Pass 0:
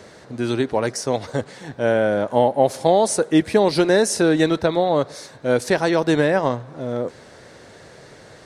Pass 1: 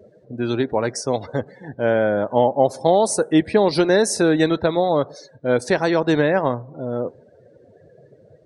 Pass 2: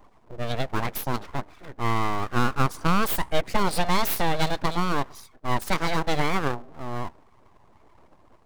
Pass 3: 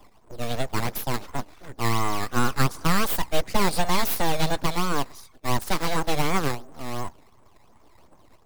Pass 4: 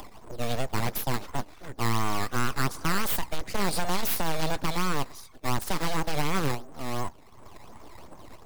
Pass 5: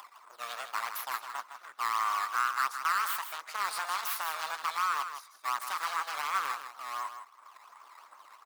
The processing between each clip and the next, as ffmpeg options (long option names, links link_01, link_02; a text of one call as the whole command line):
ffmpeg -i in.wav -af "afftdn=noise_reduction=29:noise_floor=-37" out.wav
ffmpeg -i in.wav -af "aeval=exprs='abs(val(0))':channel_layout=same,highshelf=frequency=5800:gain=8,volume=-4dB" out.wav
ffmpeg -i in.wav -filter_complex "[0:a]aphaser=in_gain=1:out_gain=1:delay=4.2:decay=0.21:speed=1.1:type=sinusoidal,acrossover=split=140|2100[link_01][link_02][link_03];[link_02]acrusher=samples=10:mix=1:aa=0.000001:lfo=1:lforange=10:lforate=2.8[link_04];[link_01][link_04][link_03]amix=inputs=3:normalize=0" out.wav
ffmpeg -i in.wav -af "acompressor=mode=upward:threshold=-34dB:ratio=2.5,volume=21dB,asoftclip=hard,volume=-21dB" out.wav
ffmpeg -i in.wav -af "highpass=frequency=1200:width_type=q:width=3.7,aecho=1:1:160:0.355,volume=-6.5dB" out.wav